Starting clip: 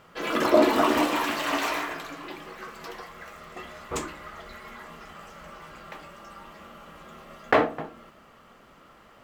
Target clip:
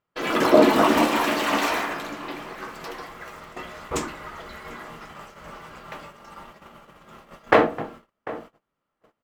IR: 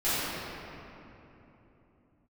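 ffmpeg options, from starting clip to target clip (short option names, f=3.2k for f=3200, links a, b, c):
-filter_complex "[0:a]asplit=2[a][b];[b]asetrate=33038,aresample=44100,atempo=1.33484,volume=-7dB[c];[a][c]amix=inputs=2:normalize=0,asplit=2[d][e];[e]adelay=744,lowpass=f=1.6k:p=1,volume=-16dB,asplit=2[f][g];[g]adelay=744,lowpass=f=1.6k:p=1,volume=0.2[h];[d][f][h]amix=inputs=3:normalize=0,agate=range=-32dB:threshold=-44dB:ratio=16:detection=peak,volume=3dB"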